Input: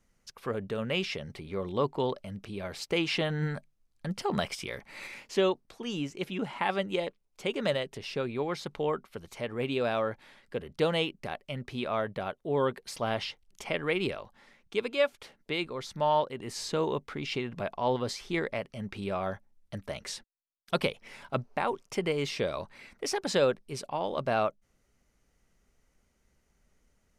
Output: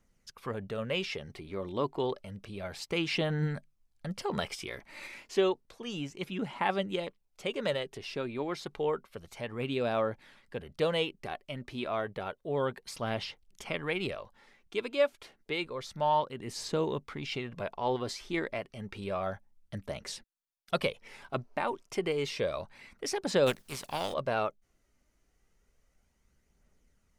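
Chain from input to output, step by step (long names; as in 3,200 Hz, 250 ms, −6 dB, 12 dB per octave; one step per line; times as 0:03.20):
0:23.46–0:24.12: compressing power law on the bin magnitudes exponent 0.51
phase shifter 0.3 Hz, delay 3.4 ms, feedback 30%
level −2.5 dB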